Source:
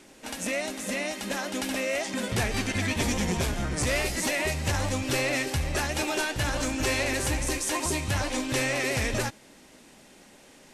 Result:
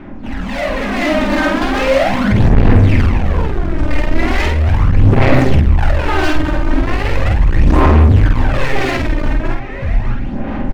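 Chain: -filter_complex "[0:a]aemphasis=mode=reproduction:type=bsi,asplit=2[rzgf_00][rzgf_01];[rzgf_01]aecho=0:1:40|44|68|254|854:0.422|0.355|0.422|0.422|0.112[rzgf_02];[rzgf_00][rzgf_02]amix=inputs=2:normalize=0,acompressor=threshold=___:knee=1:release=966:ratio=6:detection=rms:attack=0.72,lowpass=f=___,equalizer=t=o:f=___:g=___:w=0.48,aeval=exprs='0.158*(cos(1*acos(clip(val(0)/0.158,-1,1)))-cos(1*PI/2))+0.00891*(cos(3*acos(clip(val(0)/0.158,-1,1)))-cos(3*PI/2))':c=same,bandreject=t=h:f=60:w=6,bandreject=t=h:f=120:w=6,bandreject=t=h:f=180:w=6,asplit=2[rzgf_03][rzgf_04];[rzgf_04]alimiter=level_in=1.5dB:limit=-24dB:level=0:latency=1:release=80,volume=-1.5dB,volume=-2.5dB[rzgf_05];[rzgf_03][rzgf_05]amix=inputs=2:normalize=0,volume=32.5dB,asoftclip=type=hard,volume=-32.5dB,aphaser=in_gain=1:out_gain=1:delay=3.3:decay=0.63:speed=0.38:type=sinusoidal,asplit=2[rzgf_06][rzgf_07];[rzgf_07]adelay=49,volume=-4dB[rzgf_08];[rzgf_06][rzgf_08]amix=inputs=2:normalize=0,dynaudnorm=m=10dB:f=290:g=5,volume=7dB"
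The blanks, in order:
-19dB, 1800, 460, -11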